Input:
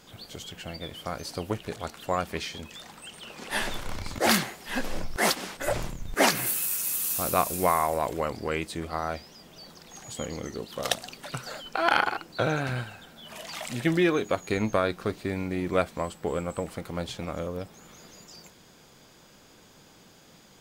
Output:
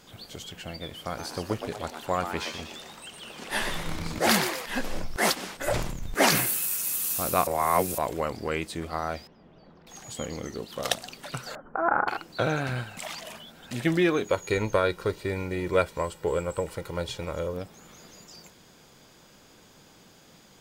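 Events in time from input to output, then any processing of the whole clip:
0.98–4.66 s: frequency-shifting echo 120 ms, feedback 49%, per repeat +150 Hz, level -8 dB
5.69–6.70 s: decay stretcher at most 42 dB/s
7.47–7.98 s: reverse
9.27–9.87 s: tape spacing loss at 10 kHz 45 dB
11.55–12.08 s: steep low-pass 1.5 kHz
12.97–13.71 s: reverse
14.27–17.54 s: comb 2.1 ms, depth 59%

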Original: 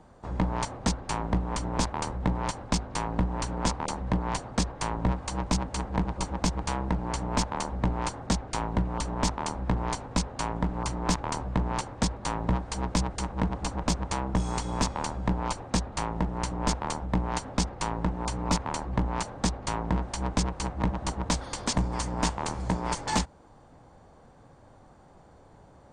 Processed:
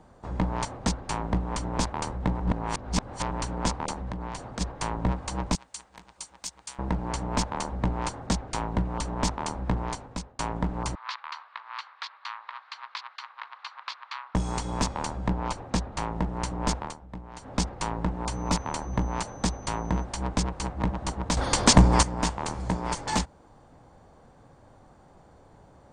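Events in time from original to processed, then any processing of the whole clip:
2.40–3.31 s: reverse
3.92–4.61 s: compression 10:1, threshold -30 dBFS
5.55–6.79 s: pre-emphasis filter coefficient 0.97
9.75–10.39 s: fade out, to -20.5 dB
10.95–14.35 s: elliptic band-pass 1.1–4.3 kHz, stop band 80 dB
15.30–16.03 s: treble shelf 7 kHz -7 dB
16.78–17.55 s: dip -13.5 dB, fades 0.18 s
18.30–20.03 s: whistle 6.1 kHz -53 dBFS
21.37–22.03 s: gain +11 dB

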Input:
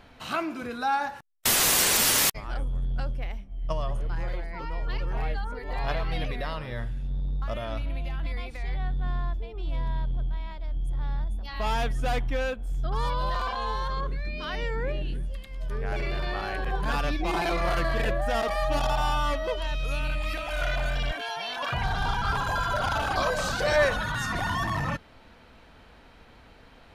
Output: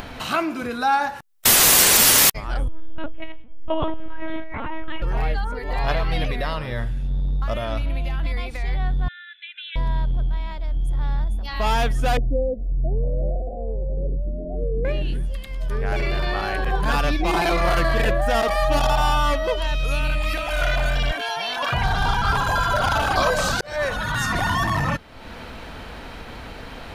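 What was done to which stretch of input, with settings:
2.68–5.02 s: LPC vocoder at 8 kHz pitch kept
9.08–9.76 s: brick-wall FIR band-pass 1.4–4.1 kHz
12.17–14.85 s: steep low-pass 700 Hz 96 dB/octave
23.61–24.19 s: fade in
whole clip: treble shelf 11 kHz +4.5 dB; upward compressor, threshold -32 dBFS; trim +6.5 dB

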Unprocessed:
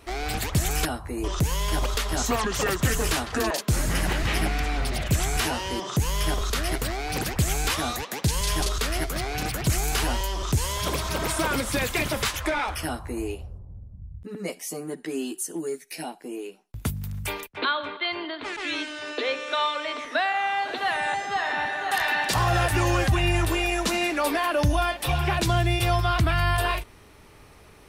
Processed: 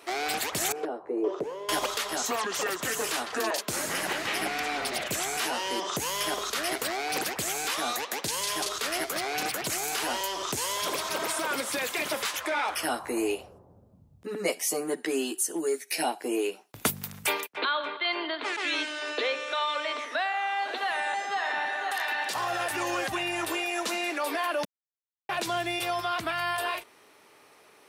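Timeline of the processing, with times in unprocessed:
0.72–1.69 s: band-pass filter 430 Hz, Q 2.7
24.65–25.29 s: mute
whole clip: high-pass 370 Hz 12 dB/octave; peak limiter -19 dBFS; gain riding

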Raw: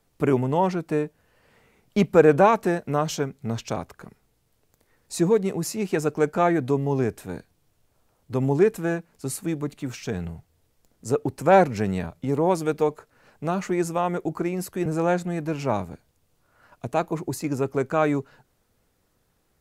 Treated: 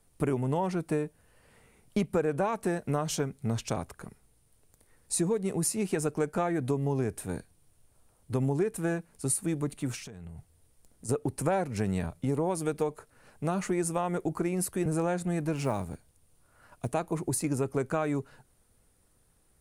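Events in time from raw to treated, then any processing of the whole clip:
10.00–11.09 s: compression 16:1, threshold -39 dBFS
15.56–16.90 s: short-mantissa float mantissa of 4-bit
whole clip: peaking EQ 9.4 kHz +15 dB 0.36 oct; compression 6:1, threshold -23 dBFS; bass shelf 100 Hz +7.5 dB; trim -2.5 dB

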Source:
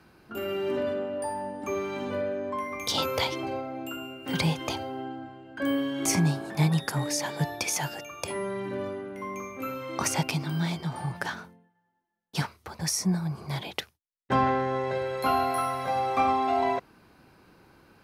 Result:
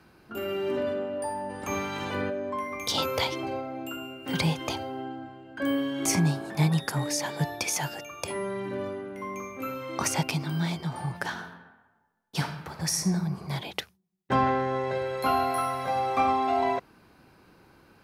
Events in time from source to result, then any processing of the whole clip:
1.49–2.29 s: spectral peaks clipped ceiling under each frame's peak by 16 dB
11.24–13.12 s: reverb throw, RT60 1.2 s, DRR 6 dB

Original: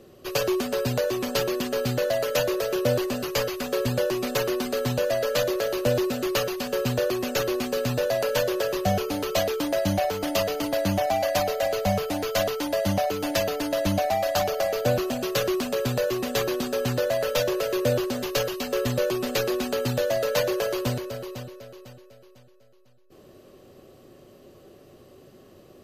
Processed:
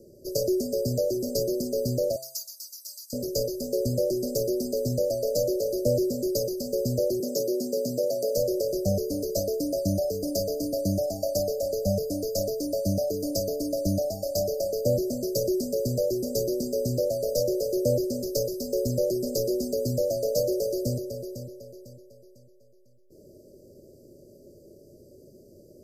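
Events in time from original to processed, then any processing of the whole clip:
2.16–3.13 s: steep high-pass 1.4 kHz
7.20–8.37 s: high-pass 160 Hz 24 dB/octave
whole clip: Chebyshev band-stop 620–4800 Hz, order 5; de-hum 131.9 Hz, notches 30

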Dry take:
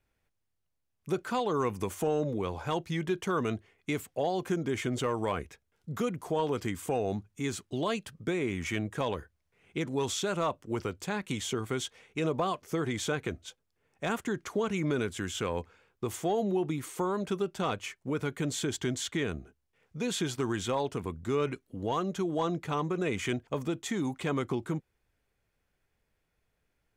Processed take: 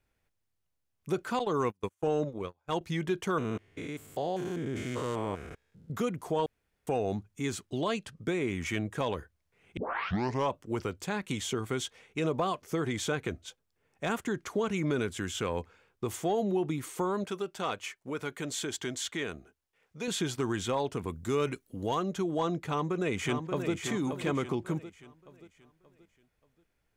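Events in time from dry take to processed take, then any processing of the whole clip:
1.39–2.81 s: gate -32 dBFS, range -38 dB
3.38–5.90 s: spectrogram pixelated in time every 200 ms
6.46–6.87 s: room tone
7.81–8.21 s: low-pass 9.9 kHz
9.77 s: tape start 0.77 s
17.24–20.08 s: bass shelf 270 Hz -11 dB
21.08–21.95 s: treble shelf 5.7 kHz +10.5 dB
22.61–23.73 s: echo throw 580 ms, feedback 40%, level -6.5 dB

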